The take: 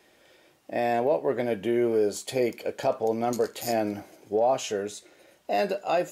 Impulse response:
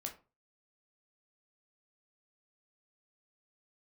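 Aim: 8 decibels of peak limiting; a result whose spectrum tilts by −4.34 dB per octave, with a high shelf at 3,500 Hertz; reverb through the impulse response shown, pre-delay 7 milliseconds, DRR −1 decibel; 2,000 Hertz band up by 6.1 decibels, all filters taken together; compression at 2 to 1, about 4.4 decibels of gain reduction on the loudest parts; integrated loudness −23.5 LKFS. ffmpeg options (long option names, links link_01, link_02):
-filter_complex "[0:a]equalizer=frequency=2000:width_type=o:gain=9,highshelf=frequency=3500:gain=-5,acompressor=threshold=-27dB:ratio=2,alimiter=limit=-23dB:level=0:latency=1,asplit=2[link_01][link_02];[1:a]atrim=start_sample=2205,adelay=7[link_03];[link_02][link_03]afir=irnorm=-1:irlink=0,volume=3dB[link_04];[link_01][link_04]amix=inputs=2:normalize=0,volume=6dB"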